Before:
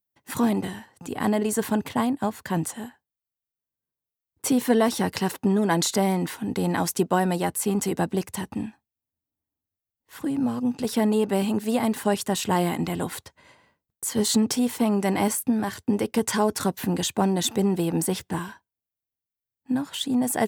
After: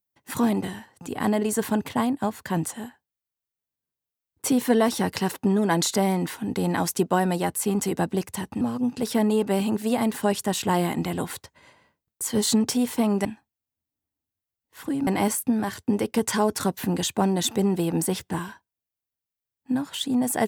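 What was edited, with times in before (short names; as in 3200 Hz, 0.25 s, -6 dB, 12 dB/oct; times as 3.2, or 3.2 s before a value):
8.61–10.43 move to 15.07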